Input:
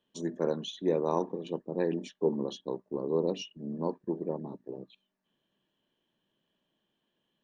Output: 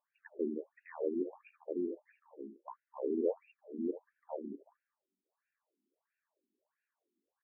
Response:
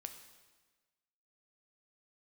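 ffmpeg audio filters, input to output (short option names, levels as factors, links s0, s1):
-filter_complex "[0:a]asettb=1/sr,asplit=3[s0][s1][s2];[s0]atrim=end=1.864[s3];[s1]atrim=start=1.86:end=2.65,asetpts=PTS-STARTPTS,afade=t=in:d=0.004:c=qsin,afade=t=out:st=0.786:d=0.004:c=qsin,acompressor=threshold=0.0126:ratio=4[s4];[s2]atrim=start=2.646[s5];[s3][s4]acrossfade=d=0.004:c1=hsin:c2=qsin[s6];[s6][s5]acrossfade=d=0.004:c1=qsin:c2=hsin,asplit=2[s7][s8];[s8]aecho=0:1:78:0.2[s9];[s7][s9]amix=inputs=2:normalize=0,afftfilt=real='re*between(b*sr/1024,270*pow(2000/270,0.5+0.5*sin(2*PI*1.5*pts/sr))/1.41,270*pow(2000/270,0.5+0.5*sin(2*PI*1.5*pts/sr))*1.41)':imag='im*between(b*sr/1024,270*pow(2000/270,0.5+0.5*sin(2*PI*1.5*pts/sr))/1.41,270*pow(2000/270,0.5+0.5*sin(2*PI*1.5*pts/sr))*1.41)':win_size=1024:overlap=0.75"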